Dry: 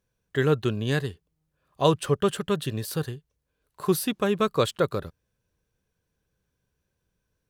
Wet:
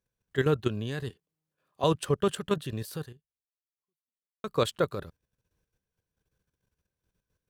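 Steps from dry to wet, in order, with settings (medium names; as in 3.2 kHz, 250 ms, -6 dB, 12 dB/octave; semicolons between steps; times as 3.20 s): 1.10–1.84 s: high-pass 180 Hz 12 dB/octave; 2.97–4.44 s: fade out exponential; level held to a coarse grid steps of 11 dB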